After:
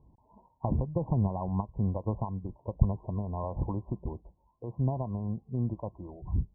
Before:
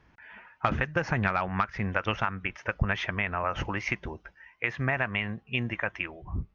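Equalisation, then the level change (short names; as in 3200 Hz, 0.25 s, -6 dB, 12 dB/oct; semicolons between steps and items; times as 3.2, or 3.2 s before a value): brick-wall FIR low-pass 1100 Hz; low shelf 330 Hz +11 dB; -6.5 dB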